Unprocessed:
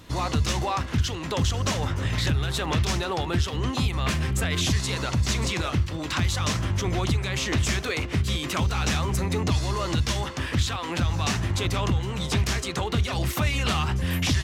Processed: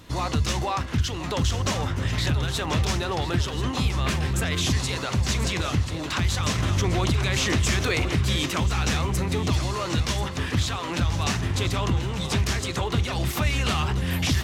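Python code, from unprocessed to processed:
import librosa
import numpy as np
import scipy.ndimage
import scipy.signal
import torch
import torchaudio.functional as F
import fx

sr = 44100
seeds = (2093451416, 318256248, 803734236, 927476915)

y = fx.echo_feedback(x, sr, ms=1035, feedback_pct=51, wet_db=-11.0)
y = fx.env_flatten(y, sr, amount_pct=50, at=(6.58, 8.46))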